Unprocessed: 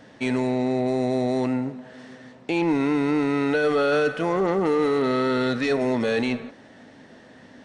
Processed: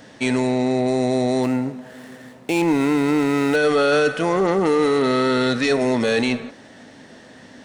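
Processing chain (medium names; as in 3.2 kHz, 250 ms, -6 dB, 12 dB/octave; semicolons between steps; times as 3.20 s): 1.43–3.56 s: median filter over 9 samples; treble shelf 5 kHz +10.5 dB; trim +3.5 dB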